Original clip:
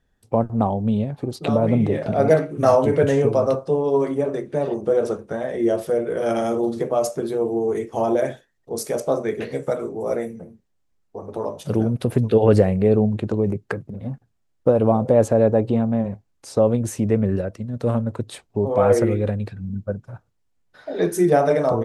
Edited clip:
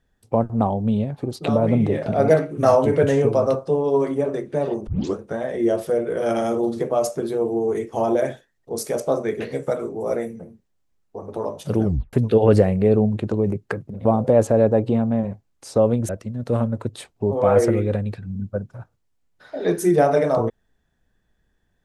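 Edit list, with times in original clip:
4.87 tape start 0.28 s
11.84 tape stop 0.29 s
14.05–14.86 cut
16.9–17.43 cut

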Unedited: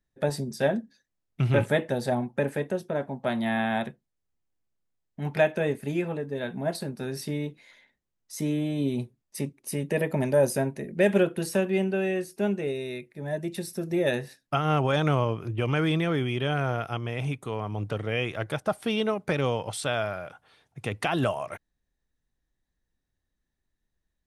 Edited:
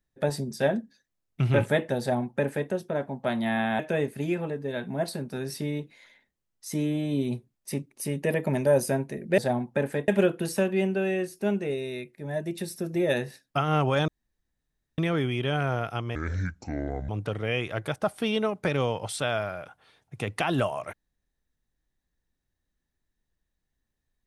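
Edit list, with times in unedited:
2–2.7 copy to 11.05
3.79–5.46 cut
15.05–15.95 room tone
17.12–17.73 speed 65%

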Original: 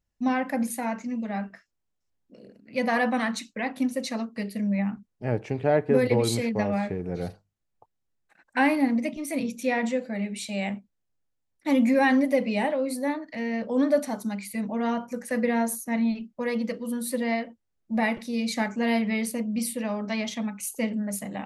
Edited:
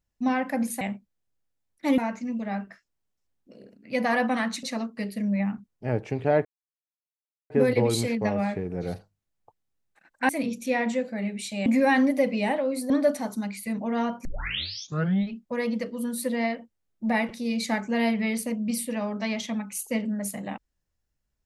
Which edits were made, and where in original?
3.46–4.02 cut
5.84 insert silence 1.05 s
8.63–9.26 cut
10.63–11.8 move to 0.81
13.04–13.78 cut
15.13 tape start 1.08 s

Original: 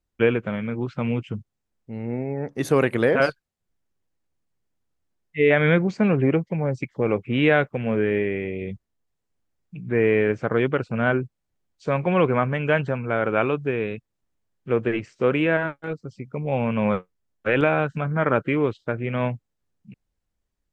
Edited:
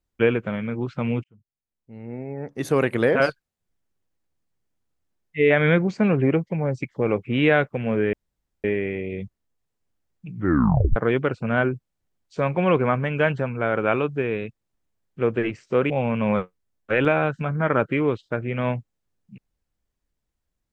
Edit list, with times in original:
1.24–3.03 fade in
8.13 insert room tone 0.51 s
9.83 tape stop 0.62 s
15.39–16.46 cut

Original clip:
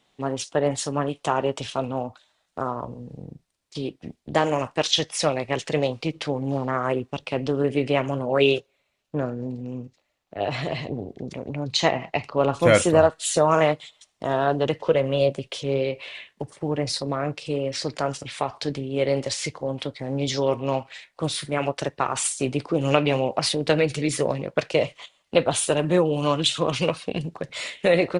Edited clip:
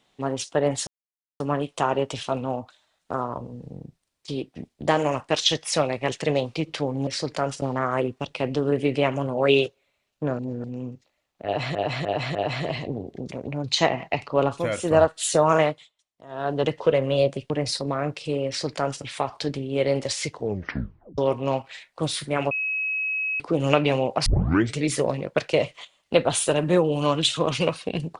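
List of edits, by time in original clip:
0.87 insert silence 0.53 s
9.31–9.56 reverse
10.37–10.67 loop, 4 plays
12.46–13.03 dip -11.5 dB, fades 0.24 s
13.61–14.65 dip -19.5 dB, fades 0.34 s
15.52–16.71 cut
17.69–18.24 copy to 6.54
19.53 tape stop 0.86 s
21.72–22.61 bleep 2560 Hz -23.5 dBFS
23.47 tape start 0.50 s

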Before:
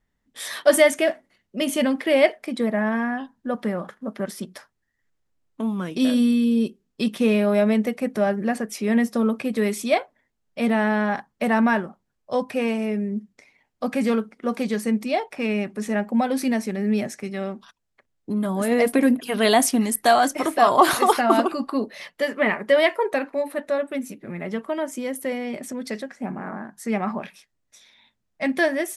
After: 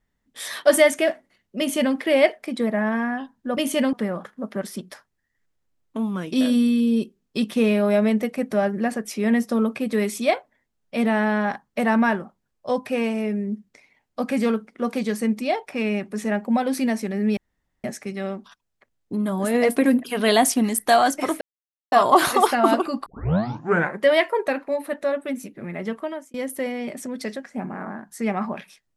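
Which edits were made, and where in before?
1.59–1.95 copy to 3.57
17.01 insert room tone 0.47 s
20.58 insert silence 0.51 s
21.72 tape start 0.94 s
24.63–25 fade out

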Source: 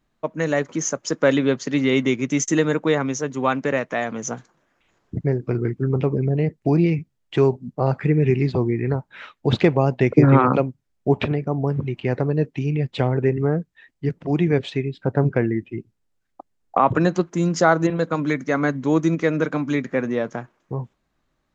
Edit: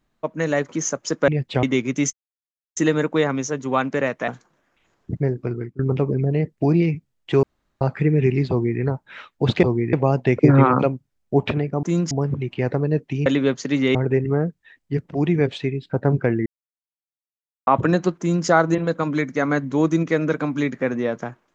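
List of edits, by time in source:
1.28–1.97 swap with 12.72–13.07
2.47 insert silence 0.63 s
3.99–4.32 cut
5.19–5.83 fade out equal-power, to -17.5 dB
7.47–7.85 room tone
8.54–8.84 copy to 9.67
15.58–16.79 mute
17.31–17.59 copy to 11.57

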